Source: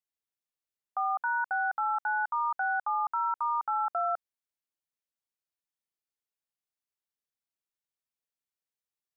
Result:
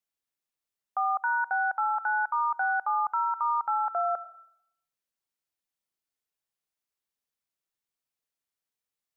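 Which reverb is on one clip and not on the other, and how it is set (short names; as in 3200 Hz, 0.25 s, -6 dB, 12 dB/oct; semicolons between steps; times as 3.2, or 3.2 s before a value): digital reverb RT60 0.73 s, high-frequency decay 0.8×, pre-delay 45 ms, DRR 17 dB; gain +2.5 dB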